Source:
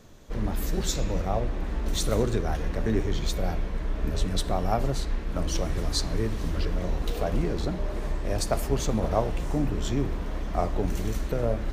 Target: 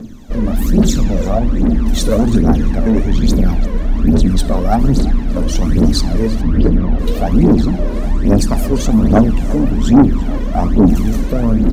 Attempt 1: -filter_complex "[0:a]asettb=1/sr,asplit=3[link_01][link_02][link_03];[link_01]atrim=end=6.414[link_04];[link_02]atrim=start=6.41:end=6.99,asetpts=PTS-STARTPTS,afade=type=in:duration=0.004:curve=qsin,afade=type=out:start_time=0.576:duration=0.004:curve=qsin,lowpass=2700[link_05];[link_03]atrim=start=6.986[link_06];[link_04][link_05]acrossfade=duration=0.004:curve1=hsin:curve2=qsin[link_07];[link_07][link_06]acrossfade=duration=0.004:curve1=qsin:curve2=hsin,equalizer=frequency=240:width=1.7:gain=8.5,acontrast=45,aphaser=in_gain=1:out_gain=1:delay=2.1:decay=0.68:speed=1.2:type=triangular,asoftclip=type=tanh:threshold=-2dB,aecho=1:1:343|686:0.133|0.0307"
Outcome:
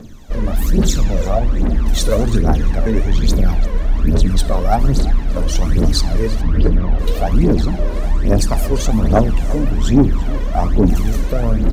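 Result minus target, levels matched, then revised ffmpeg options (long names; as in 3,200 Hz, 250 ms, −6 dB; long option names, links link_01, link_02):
250 Hz band −3.5 dB
-filter_complex "[0:a]asettb=1/sr,asplit=3[link_01][link_02][link_03];[link_01]atrim=end=6.414[link_04];[link_02]atrim=start=6.41:end=6.99,asetpts=PTS-STARTPTS,afade=type=in:duration=0.004:curve=qsin,afade=type=out:start_time=0.576:duration=0.004:curve=qsin,lowpass=2700[link_05];[link_03]atrim=start=6.986[link_06];[link_04][link_05]acrossfade=duration=0.004:curve1=hsin:curve2=qsin[link_07];[link_07][link_06]acrossfade=duration=0.004:curve1=qsin:curve2=hsin,equalizer=frequency=240:width=1.7:gain=19,acontrast=45,aphaser=in_gain=1:out_gain=1:delay=2.1:decay=0.68:speed=1.2:type=triangular,asoftclip=type=tanh:threshold=-2dB,aecho=1:1:343|686:0.133|0.0307"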